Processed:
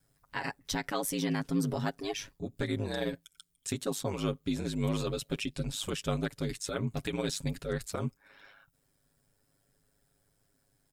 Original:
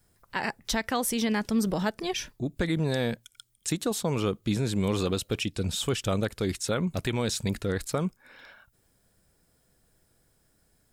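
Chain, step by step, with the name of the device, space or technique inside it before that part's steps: ring-modulated robot voice (ring modulator 51 Hz; comb 7.3 ms); gain -4 dB

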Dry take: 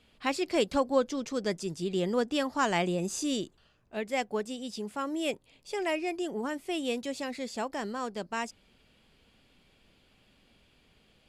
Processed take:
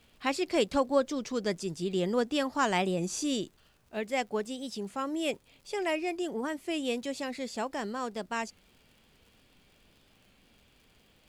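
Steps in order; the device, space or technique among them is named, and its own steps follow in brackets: warped LP (record warp 33 1/3 rpm, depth 100 cents; crackle 77/s -51 dBFS; pink noise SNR 39 dB)

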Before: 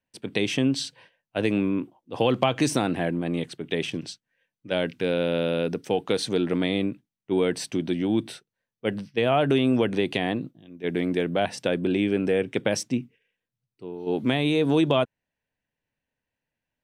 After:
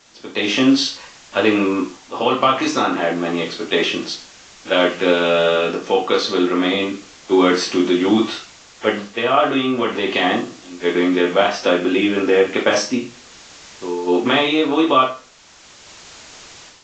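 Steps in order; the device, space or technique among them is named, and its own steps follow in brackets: 11.16–11.8 HPF 53 Hz; filmed off a television (BPF 270–6900 Hz; bell 1200 Hz +11 dB 0.42 oct; reverb RT60 0.35 s, pre-delay 3 ms, DRR -2.5 dB; white noise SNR 23 dB; AGC gain up to 12 dB; gain -1 dB; AAC 32 kbps 16000 Hz)

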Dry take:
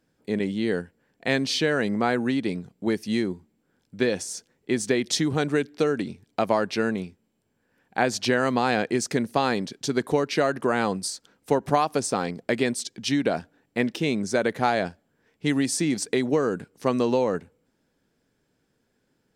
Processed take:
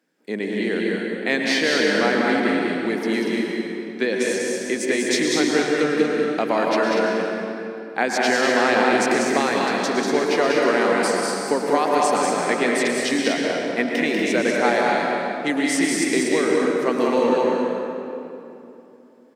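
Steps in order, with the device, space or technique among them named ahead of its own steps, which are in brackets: stadium PA (HPF 210 Hz 24 dB/oct; bell 2000 Hz +5 dB 0.62 oct; loudspeakers at several distances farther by 66 m -4 dB, 82 m -6 dB; reverb RT60 2.9 s, pre-delay 0.102 s, DRR 0 dB)

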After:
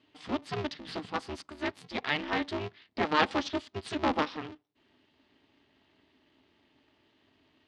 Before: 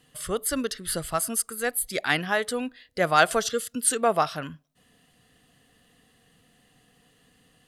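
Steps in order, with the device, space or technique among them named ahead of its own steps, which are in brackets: ring modulator pedal into a guitar cabinet (polarity switched at an audio rate 150 Hz; speaker cabinet 86–4500 Hz, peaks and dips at 140 Hz -4 dB, 260 Hz +8 dB, 540 Hz -5 dB, 1500 Hz -5 dB); gain -5 dB

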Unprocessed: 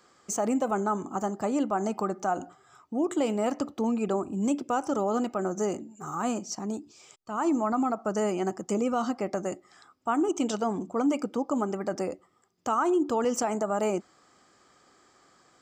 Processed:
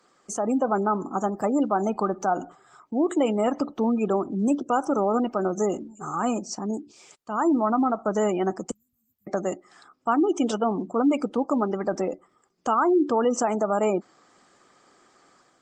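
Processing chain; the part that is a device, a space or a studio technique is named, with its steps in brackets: 8.71–9.27 inverse Chebyshev band-stop 300–4500 Hz, stop band 70 dB; noise-suppressed video call (HPF 140 Hz 12 dB/oct; spectral gate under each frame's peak -30 dB strong; AGC gain up to 4.5 dB; Opus 24 kbps 48000 Hz)

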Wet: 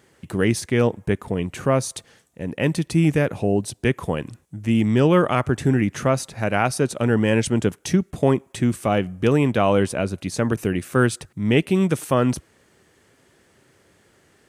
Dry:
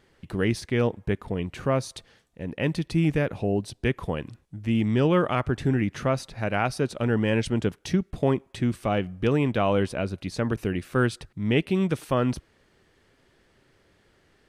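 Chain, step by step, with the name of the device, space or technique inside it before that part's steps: budget condenser microphone (HPF 81 Hz; resonant high shelf 5700 Hz +6 dB, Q 1.5); gain +5 dB

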